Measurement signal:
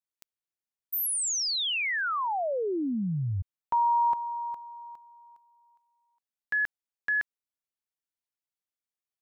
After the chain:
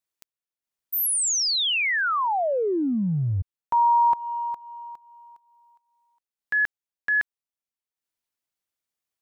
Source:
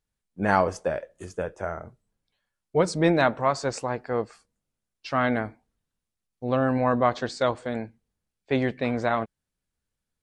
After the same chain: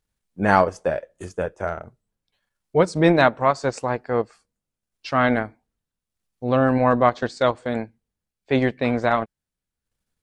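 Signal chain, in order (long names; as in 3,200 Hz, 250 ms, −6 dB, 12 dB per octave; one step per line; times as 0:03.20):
transient designer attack −2 dB, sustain −8 dB
level +5.5 dB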